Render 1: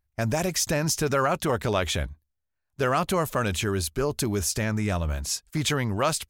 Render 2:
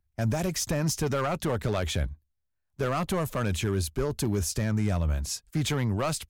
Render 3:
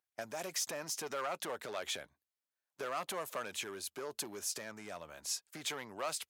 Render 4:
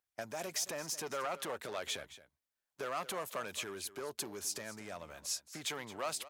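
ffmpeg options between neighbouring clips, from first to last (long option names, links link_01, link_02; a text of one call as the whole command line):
ffmpeg -i in.wav -filter_complex "[0:a]lowshelf=frequency=330:gain=6.5,acrossover=split=130[link_01][link_02];[link_02]asoftclip=type=hard:threshold=-18.5dB[link_03];[link_01][link_03]amix=inputs=2:normalize=0,volume=-4.5dB" out.wav
ffmpeg -i in.wav -af "acompressor=threshold=-29dB:ratio=6,highpass=530,volume=-2.5dB" out.wav
ffmpeg -i in.wav -af "lowshelf=frequency=82:gain=10.5,aecho=1:1:221:0.168" out.wav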